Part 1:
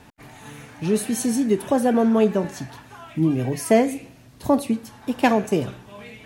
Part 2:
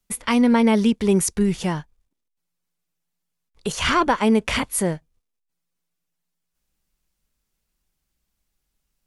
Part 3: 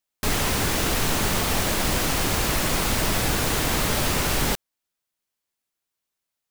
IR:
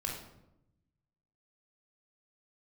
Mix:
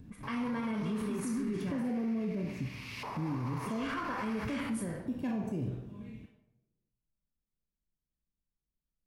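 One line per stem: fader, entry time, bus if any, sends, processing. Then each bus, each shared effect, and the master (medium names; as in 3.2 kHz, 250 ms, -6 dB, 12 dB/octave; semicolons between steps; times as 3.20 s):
0.0 dB, 0.00 s, bus A, send -22 dB, upward compressor, threshold -48 dBFS
-6.0 dB, 0.00 s, bus A, send -12 dB, bass shelf 210 Hz -10 dB; level-controlled noise filter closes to 570 Hz, open at -22 dBFS; peaking EQ 1.5 kHz +7.5 dB 0.99 oct
1.24 s -15.5 dB -> 1.54 s -23 dB -> 2.62 s -23 dB -> 3.06 s -10.5 dB, 0.00 s, no bus, send -7.5 dB, LFO band-pass saw up 0.33 Hz 820–2900 Hz; rippled EQ curve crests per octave 0.85, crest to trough 8 dB
bus A: 0.0 dB, inverse Chebyshev band-stop 1.2–9.8 kHz, stop band 70 dB; peak limiter -25 dBFS, peak gain reduction 11.5 dB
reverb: on, RT60 0.85 s, pre-delay 20 ms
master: peak limiter -27.5 dBFS, peak gain reduction 9.5 dB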